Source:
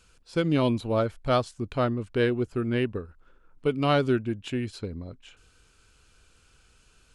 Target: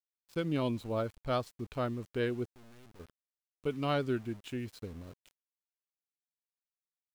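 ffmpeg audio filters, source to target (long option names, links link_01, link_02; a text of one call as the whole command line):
ffmpeg -i in.wav -filter_complex "[0:a]asplit=3[link_01][link_02][link_03];[link_01]afade=type=out:start_time=2.46:duration=0.02[link_04];[link_02]aeval=exprs='(tanh(178*val(0)+0.45)-tanh(0.45))/178':channel_layout=same,afade=type=in:start_time=2.46:duration=0.02,afade=type=out:start_time=2.99:duration=0.02[link_05];[link_03]afade=type=in:start_time=2.99:duration=0.02[link_06];[link_04][link_05][link_06]amix=inputs=3:normalize=0,aeval=exprs='val(0)*gte(abs(val(0)),0.0075)':channel_layout=same,volume=-8.5dB" out.wav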